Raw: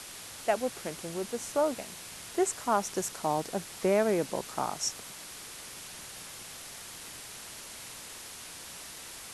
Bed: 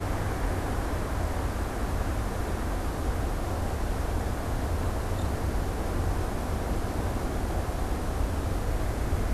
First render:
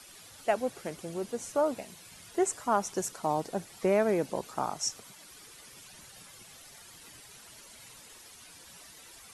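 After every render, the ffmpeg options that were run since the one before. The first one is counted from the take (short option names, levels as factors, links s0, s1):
-af "afftdn=nr=11:nf=-45"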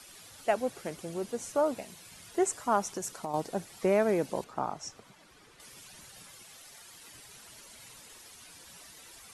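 -filter_complex "[0:a]asettb=1/sr,asplit=3[s0][s1][s2];[s0]atrim=end=2.804[s3];[s1]atrim=start=2.8:end=3.34,asetpts=PTS-STARTPTS,afade=t=in:d=0.004:c=qsin,afade=t=out:st=0.536:d=0.004:c=qsin,acompressor=threshold=0.0282:ratio=6:attack=3.2:release=140:knee=1:detection=peak[s4];[s2]atrim=start=3.336[s5];[s3][s4]acrossfade=d=0.004:c1=hsin:c2=qsin[s6];[s6][s5]acrossfade=d=0.004:c1=qsin:c2=hsin,asettb=1/sr,asplit=3[s7][s8][s9];[s7]atrim=end=4.444[s10];[s8]atrim=start=4.44:end=5.6,asetpts=PTS-STARTPTS,afade=t=in:d=0.004:c=qsin,afade=t=out:st=1.156:d=0.004:c=qsin,lowpass=f=1800:p=1[s11];[s9]atrim=start=5.596[s12];[s10][s11]acrossfade=d=0.004:c1=hsin:c2=qsin[s13];[s13][s12]acrossfade=d=0.004:c1=qsin:c2=hsin,asettb=1/sr,asplit=3[s14][s15][s16];[s14]atrim=end=6.354[s17];[s15]atrim=start=6.35:end=7.14,asetpts=PTS-STARTPTS,afade=t=in:d=0.004:c=qsin,afade=t=out:st=0.786:d=0.004:c=qsin,lowshelf=f=260:g=-6.5[s18];[s16]atrim=start=7.136[s19];[s17][s18]acrossfade=d=0.004:c1=hsin:c2=qsin[s20];[s20][s19]acrossfade=d=0.004:c1=qsin:c2=hsin"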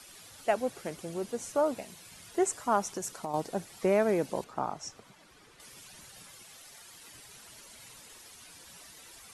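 -af anull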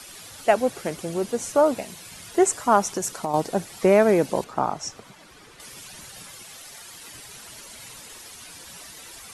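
-af "volume=2.82"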